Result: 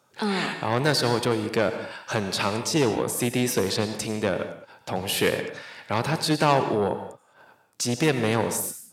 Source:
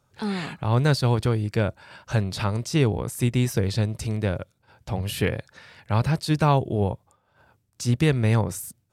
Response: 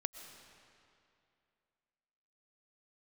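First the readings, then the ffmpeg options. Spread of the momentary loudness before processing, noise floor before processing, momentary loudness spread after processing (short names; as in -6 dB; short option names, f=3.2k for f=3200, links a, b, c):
9 LU, -69 dBFS, 9 LU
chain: -filter_complex "[0:a]aeval=exprs='0.376*(cos(1*acos(clip(val(0)/0.376,-1,1)))-cos(1*PI/2))+0.0668*(cos(5*acos(clip(val(0)/0.376,-1,1)))-cos(5*PI/2))':c=same,highpass=260[a];[1:a]atrim=start_sample=2205,afade=t=out:st=0.36:d=0.01,atrim=end_sample=16317,asetrate=61740,aresample=44100[b];[a][b]afir=irnorm=-1:irlink=0,volume=5dB"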